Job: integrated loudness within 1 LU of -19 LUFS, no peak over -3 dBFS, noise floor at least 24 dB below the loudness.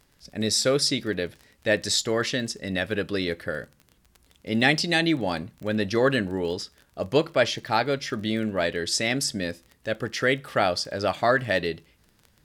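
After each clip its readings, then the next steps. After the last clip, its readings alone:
tick rate 21 per s; loudness -25.5 LUFS; peak level -6.0 dBFS; loudness target -19.0 LUFS
-> de-click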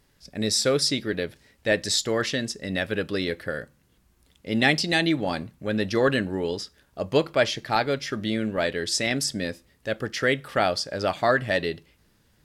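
tick rate 0.16 per s; loudness -25.5 LUFS; peak level -6.0 dBFS; loudness target -19.0 LUFS
-> trim +6.5 dB; peak limiter -3 dBFS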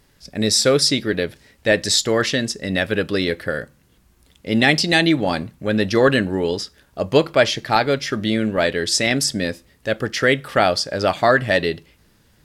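loudness -19.0 LUFS; peak level -3.0 dBFS; noise floor -57 dBFS

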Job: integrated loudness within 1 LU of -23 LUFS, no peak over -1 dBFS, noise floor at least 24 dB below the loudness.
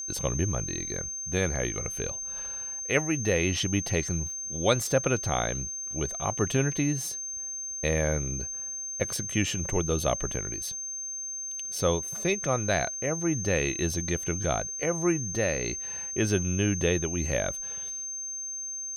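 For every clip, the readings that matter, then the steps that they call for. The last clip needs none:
tick rate 40 per s; steady tone 6.3 kHz; tone level -33 dBFS; loudness -28.5 LUFS; peak level -9.0 dBFS; loudness target -23.0 LUFS
-> de-click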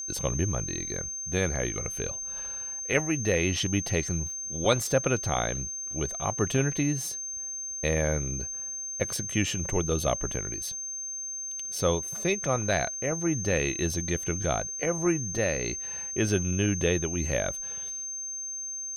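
tick rate 0.84 per s; steady tone 6.3 kHz; tone level -33 dBFS
-> band-stop 6.3 kHz, Q 30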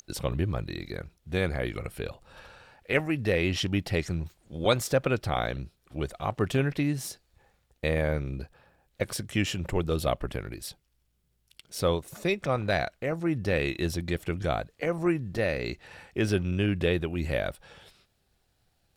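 steady tone not found; loudness -29.5 LUFS; peak level -9.5 dBFS; loudness target -23.0 LUFS
-> trim +6.5 dB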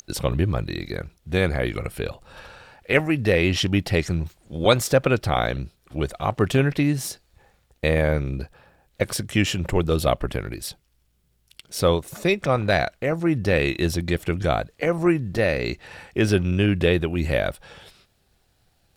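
loudness -23.0 LUFS; peak level -3.0 dBFS; noise floor -66 dBFS

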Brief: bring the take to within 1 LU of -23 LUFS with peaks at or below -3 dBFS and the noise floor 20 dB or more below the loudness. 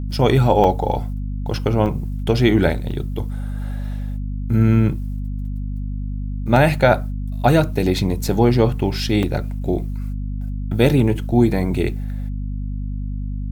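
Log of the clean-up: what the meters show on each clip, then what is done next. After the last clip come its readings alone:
dropouts 8; longest dropout 3.0 ms; hum 50 Hz; highest harmonic 250 Hz; hum level -23 dBFS; loudness -20.0 LUFS; peak level -1.5 dBFS; loudness target -23.0 LUFS
-> interpolate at 0.13/0.64/1.86/2.91/6.56/8.28/9.23/10.87 s, 3 ms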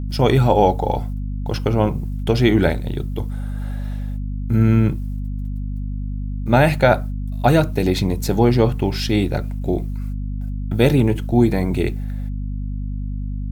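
dropouts 0; hum 50 Hz; highest harmonic 250 Hz; hum level -23 dBFS
-> hum notches 50/100/150/200/250 Hz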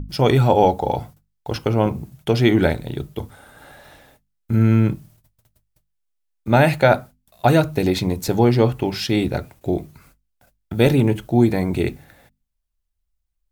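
hum not found; loudness -19.0 LUFS; peak level -1.5 dBFS; loudness target -23.0 LUFS
-> trim -4 dB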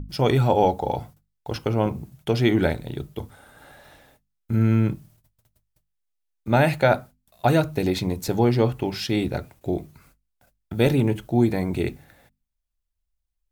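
loudness -23.0 LUFS; peak level -5.5 dBFS; noise floor -77 dBFS

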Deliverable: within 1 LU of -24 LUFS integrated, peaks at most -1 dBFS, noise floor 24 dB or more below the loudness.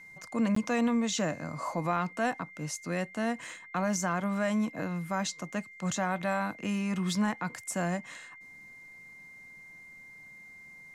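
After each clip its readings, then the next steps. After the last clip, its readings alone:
dropouts 1; longest dropout 14 ms; steady tone 2.1 kHz; tone level -48 dBFS; loudness -31.5 LUFS; peak level -18.5 dBFS; loudness target -24.0 LUFS
-> interpolate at 0.55 s, 14 ms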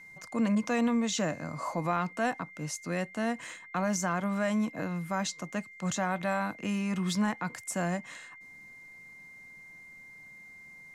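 dropouts 0; steady tone 2.1 kHz; tone level -48 dBFS
-> band-stop 2.1 kHz, Q 30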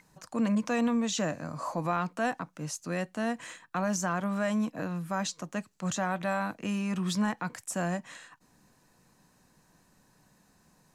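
steady tone not found; loudness -32.0 LUFS; peak level -18.5 dBFS; loudness target -24.0 LUFS
-> trim +8 dB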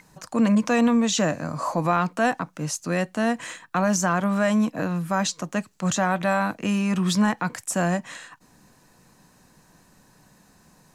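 loudness -24.0 LUFS; peak level -10.5 dBFS; noise floor -58 dBFS

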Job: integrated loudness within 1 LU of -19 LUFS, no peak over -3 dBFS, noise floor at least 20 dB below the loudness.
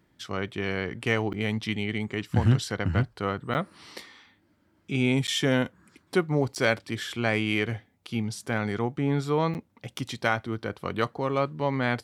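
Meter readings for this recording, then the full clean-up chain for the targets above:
dropouts 5; longest dropout 9.2 ms; loudness -28.0 LUFS; peak level -8.0 dBFS; loudness target -19.0 LUFS
-> interpolate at 1.33/3.54/5.27/6.55/9.54 s, 9.2 ms; trim +9 dB; peak limiter -3 dBFS

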